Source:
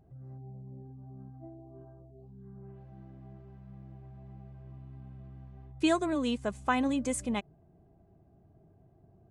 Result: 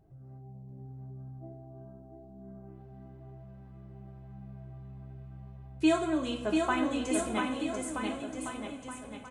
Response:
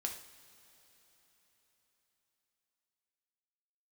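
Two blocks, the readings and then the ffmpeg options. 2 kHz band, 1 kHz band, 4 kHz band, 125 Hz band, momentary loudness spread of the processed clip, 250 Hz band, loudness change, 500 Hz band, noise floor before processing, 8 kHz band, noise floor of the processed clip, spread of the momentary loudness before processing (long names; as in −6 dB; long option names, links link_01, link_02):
+1.5 dB, +1.0 dB, +1.5 dB, +1.0 dB, 21 LU, +1.5 dB, −0.5 dB, +2.0 dB, −63 dBFS, +2.0 dB, −50 dBFS, 22 LU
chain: -filter_complex "[0:a]aecho=1:1:690|1276|1775|2199|2559:0.631|0.398|0.251|0.158|0.1[link_01];[1:a]atrim=start_sample=2205,asetrate=57330,aresample=44100[link_02];[link_01][link_02]afir=irnorm=-1:irlink=0,volume=2dB"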